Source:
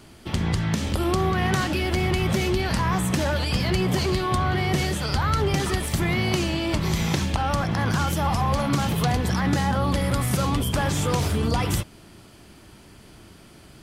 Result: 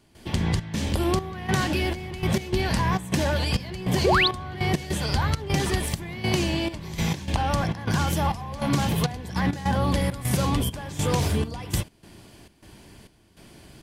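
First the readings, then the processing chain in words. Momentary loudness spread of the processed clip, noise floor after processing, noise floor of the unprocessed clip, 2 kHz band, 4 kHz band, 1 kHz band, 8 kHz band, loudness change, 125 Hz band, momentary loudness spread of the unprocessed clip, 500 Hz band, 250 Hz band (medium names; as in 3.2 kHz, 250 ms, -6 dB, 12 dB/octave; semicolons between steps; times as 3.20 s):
6 LU, -56 dBFS, -49 dBFS, -1.0 dB, -0.5 dB, -2.0 dB, -1.5 dB, -2.0 dB, -2.0 dB, 2 LU, -1.5 dB, -2.0 dB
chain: band-stop 1.3 kHz, Q 6.3; painted sound rise, 4.04–4.28 s, 330–4800 Hz -20 dBFS; trance gate ".xxx.xxx..xxx..x" 101 bpm -12 dB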